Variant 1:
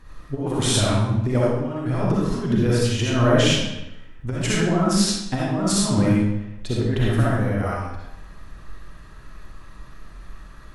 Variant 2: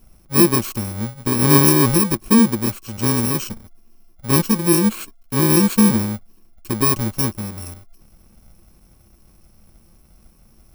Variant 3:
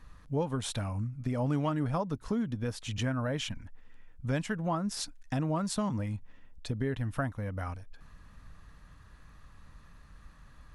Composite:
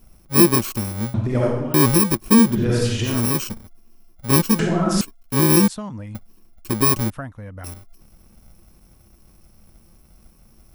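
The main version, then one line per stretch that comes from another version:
2
1.14–1.74 from 1
2.53–3.15 from 1, crossfade 0.24 s
4.59–5.01 from 1
5.68–6.15 from 3
7.1–7.64 from 3

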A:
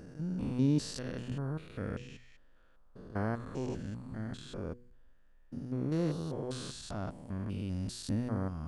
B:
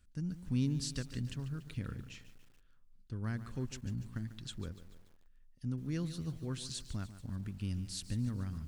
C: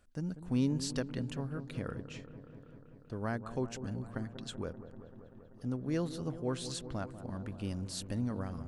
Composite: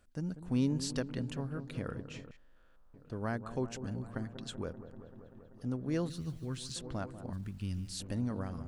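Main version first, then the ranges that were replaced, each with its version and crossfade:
C
2.31–2.94 from A
6.1–6.76 from B
7.33–8 from B

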